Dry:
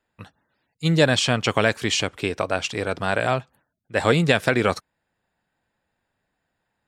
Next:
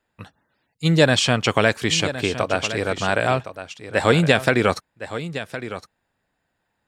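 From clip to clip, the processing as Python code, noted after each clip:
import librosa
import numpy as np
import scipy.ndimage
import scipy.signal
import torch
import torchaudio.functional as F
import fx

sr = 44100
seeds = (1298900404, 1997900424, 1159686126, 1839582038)

y = x + 10.0 ** (-12.5 / 20.0) * np.pad(x, (int(1063 * sr / 1000.0), 0))[:len(x)]
y = y * 10.0 ** (2.0 / 20.0)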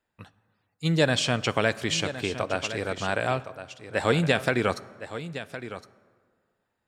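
y = fx.rev_plate(x, sr, seeds[0], rt60_s=1.9, hf_ratio=0.5, predelay_ms=0, drr_db=17.5)
y = y * 10.0 ** (-6.5 / 20.0)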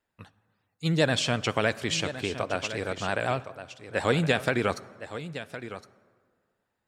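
y = fx.vibrato(x, sr, rate_hz=12.0, depth_cents=61.0)
y = y * 10.0 ** (-1.5 / 20.0)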